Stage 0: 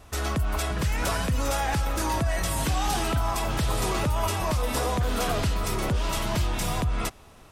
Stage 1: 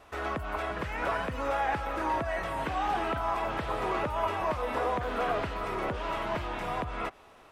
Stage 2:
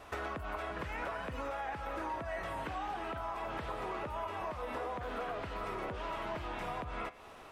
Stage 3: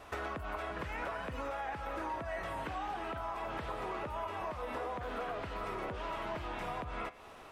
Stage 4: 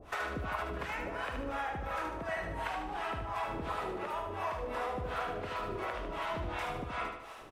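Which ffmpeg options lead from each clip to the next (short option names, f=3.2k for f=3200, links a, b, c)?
-filter_complex "[0:a]acrossover=split=2700[a][b];[b]acompressor=threshold=-47dB:ratio=4:attack=1:release=60[c];[a][c]amix=inputs=2:normalize=0,bass=f=250:g=-14,treble=f=4k:g=-11"
-af "acompressor=threshold=-39dB:ratio=10,flanger=delay=9.8:depth=4.2:regen=87:speed=0.36:shape=sinusoidal,volume=7.5dB"
-af anull
-filter_complex "[0:a]acrossover=split=560[a][b];[a]aeval=exprs='val(0)*(1-1/2+1/2*cos(2*PI*2.8*n/s))':c=same[c];[b]aeval=exprs='val(0)*(1-1/2-1/2*cos(2*PI*2.8*n/s))':c=same[d];[c][d]amix=inputs=2:normalize=0,aecho=1:1:75|150|225|300|375|450:0.531|0.255|0.122|0.0587|0.0282|0.0135,volume=6dB"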